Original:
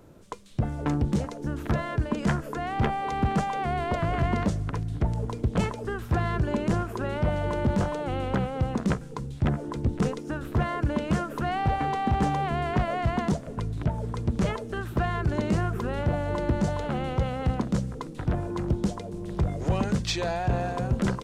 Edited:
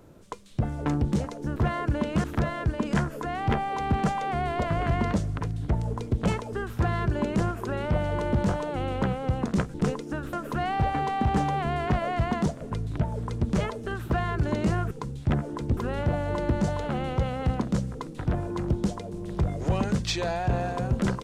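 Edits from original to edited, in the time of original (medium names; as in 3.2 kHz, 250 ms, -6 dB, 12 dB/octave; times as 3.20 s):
9.06–9.92 s: move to 15.77 s
10.51–11.19 s: move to 1.56 s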